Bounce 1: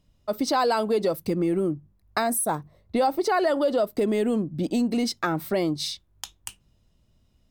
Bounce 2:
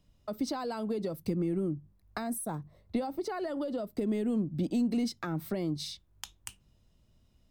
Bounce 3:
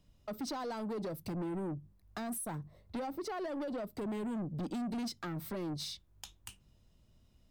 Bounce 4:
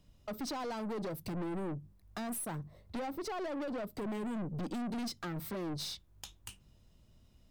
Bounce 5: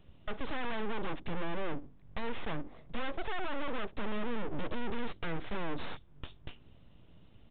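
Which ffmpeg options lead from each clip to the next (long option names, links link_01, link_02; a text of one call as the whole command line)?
ffmpeg -i in.wav -filter_complex "[0:a]acrossover=split=260[link_01][link_02];[link_02]acompressor=threshold=-36dB:ratio=4[link_03];[link_01][link_03]amix=inputs=2:normalize=0,volume=-2dB" out.wav
ffmpeg -i in.wav -af "asoftclip=type=tanh:threshold=-34.5dB" out.wav
ffmpeg -i in.wav -af "aeval=exprs='(tanh(79.4*val(0)+0.3)-tanh(0.3))/79.4':channel_layout=same,volume=3.5dB" out.wav
ffmpeg -i in.wav -af "aeval=exprs='abs(val(0))':channel_layout=same,aresample=8000,aresample=44100,volume=7.5dB" out.wav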